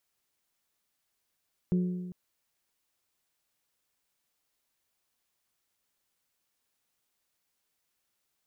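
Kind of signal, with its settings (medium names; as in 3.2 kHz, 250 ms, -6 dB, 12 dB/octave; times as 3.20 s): metal hit bell, length 0.40 s, lowest mode 180 Hz, modes 4, decay 1.39 s, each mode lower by 10 dB, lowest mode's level -22 dB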